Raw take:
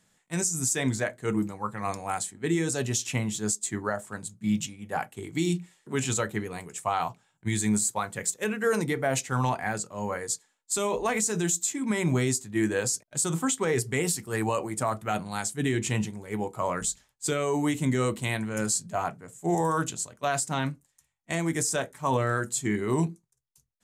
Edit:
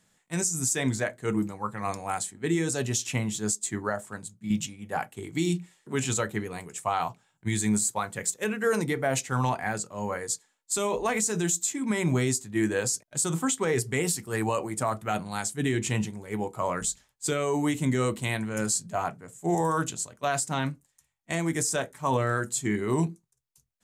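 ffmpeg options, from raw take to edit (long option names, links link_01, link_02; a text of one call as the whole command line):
ffmpeg -i in.wav -filter_complex "[0:a]asplit=2[link_01][link_02];[link_01]atrim=end=4.5,asetpts=PTS-STARTPTS,afade=type=out:start_time=4.04:duration=0.46:silence=0.446684[link_03];[link_02]atrim=start=4.5,asetpts=PTS-STARTPTS,afade=type=in:duration=0.004:curve=hsin:silence=0.446684[link_04];[link_03][link_04]concat=n=2:v=0:a=1" out.wav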